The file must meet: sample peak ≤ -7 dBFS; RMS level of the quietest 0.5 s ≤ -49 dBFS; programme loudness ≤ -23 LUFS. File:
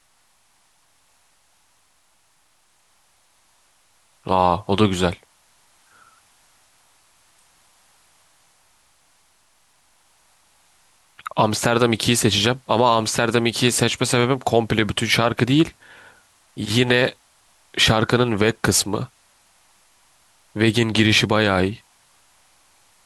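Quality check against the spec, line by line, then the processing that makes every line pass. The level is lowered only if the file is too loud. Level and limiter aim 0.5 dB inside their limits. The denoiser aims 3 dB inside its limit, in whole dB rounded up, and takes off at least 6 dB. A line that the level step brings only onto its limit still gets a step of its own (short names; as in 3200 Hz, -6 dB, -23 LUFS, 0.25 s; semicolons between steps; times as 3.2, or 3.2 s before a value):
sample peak -4.0 dBFS: fail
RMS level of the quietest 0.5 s -61 dBFS: OK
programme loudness -19.0 LUFS: fail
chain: gain -4.5 dB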